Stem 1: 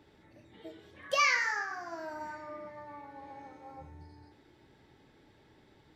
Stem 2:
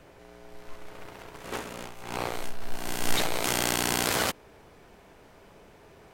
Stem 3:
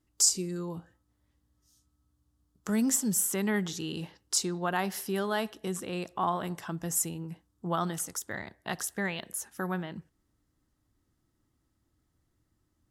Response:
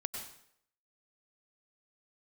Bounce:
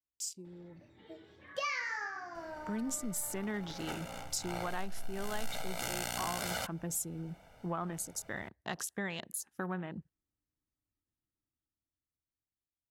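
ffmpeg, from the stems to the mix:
-filter_complex "[0:a]equalizer=f=11k:t=o:w=0.82:g=-8.5,adelay=450,volume=-3.5dB[a];[1:a]aecho=1:1:1.4:0.94,adelay=2350,volume=-8dB[b];[2:a]dynaudnorm=f=630:g=7:m=16dB,afwtdn=0.0224,volume=-15.5dB[c];[a][b][c]amix=inputs=3:normalize=0,acompressor=threshold=-34dB:ratio=3"

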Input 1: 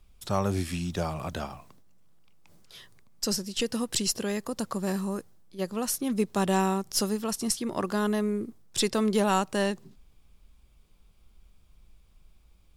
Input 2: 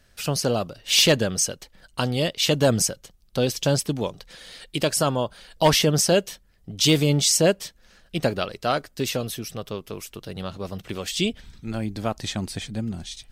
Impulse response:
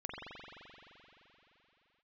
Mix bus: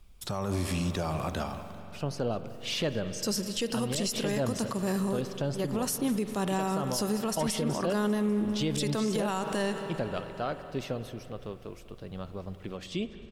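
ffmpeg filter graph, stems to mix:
-filter_complex "[0:a]volume=1dB,asplit=3[a][b][c];[b]volume=-11dB[d];[c]volume=-18.5dB[e];[1:a]lowpass=f=1.6k:p=1,adelay=1750,volume=-8dB,asplit=3[f][g][h];[g]volume=-12.5dB[i];[h]volume=-20dB[j];[2:a]atrim=start_sample=2205[k];[d][i]amix=inputs=2:normalize=0[l];[l][k]afir=irnorm=-1:irlink=0[m];[e][j]amix=inputs=2:normalize=0,aecho=0:1:198|396|594|792|990|1188|1386|1584|1782:1|0.59|0.348|0.205|0.121|0.0715|0.0422|0.0249|0.0147[n];[a][f][m][n]amix=inputs=4:normalize=0,alimiter=limit=-21dB:level=0:latency=1:release=58"

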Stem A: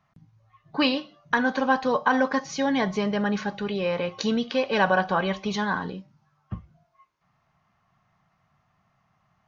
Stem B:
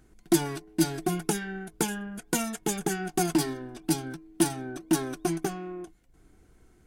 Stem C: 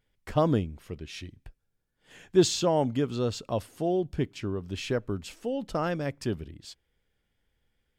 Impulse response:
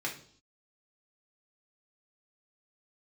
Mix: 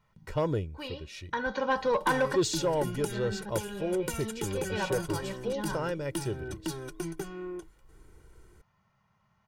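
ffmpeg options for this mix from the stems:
-filter_complex "[0:a]equalizer=f=210:w=5:g=12.5,volume=-4dB[a];[1:a]acrossover=split=150[b][c];[c]acompressor=threshold=-37dB:ratio=3[d];[b][d]amix=inputs=2:normalize=0,adelay=1750,volume=0.5dB[e];[2:a]bandreject=f=3.2k:w=15,volume=-4dB,asplit=2[f][g];[g]apad=whole_len=418002[h];[a][h]sidechaincompress=threshold=-41dB:ratio=8:attack=8.9:release=882[i];[i][e][f]amix=inputs=3:normalize=0,aecho=1:1:2.1:0.64,asoftclip=type=tanh:threshold=-18.5dB"

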